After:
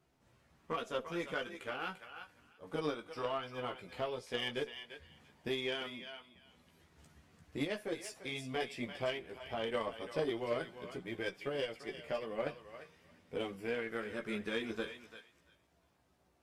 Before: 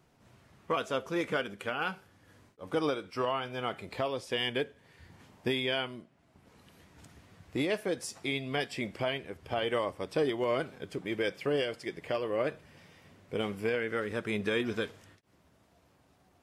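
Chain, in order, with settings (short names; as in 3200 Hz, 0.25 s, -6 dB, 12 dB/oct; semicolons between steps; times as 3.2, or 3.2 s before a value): thinning echo 0.344 s, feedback 18%, high-pass 830 Hz, level -7.5 dB; chorus voices 4, 0.14 Hz, delay 15 ms, depth 3 ms; added harmonics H 3 -17 dB, 8 -36 dB, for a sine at -18.5 dBFS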